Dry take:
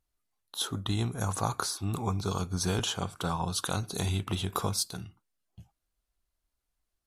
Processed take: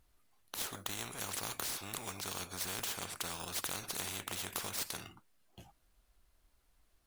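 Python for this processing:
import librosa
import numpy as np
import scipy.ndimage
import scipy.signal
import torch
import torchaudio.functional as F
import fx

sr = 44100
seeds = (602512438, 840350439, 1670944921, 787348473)

p1 = fx.sample_hold(x, sr, seeds[0], rate_hz=10000.0, jitter_pct=0)
p2 = x + F.gain(torch.from_numpy(p1), -8.0).numpy()
p3 = fx.spectral_comp(p2, sr, ratio=4.0)
y = F.gain(torch.from_numpy(p3), -7.5).numpy()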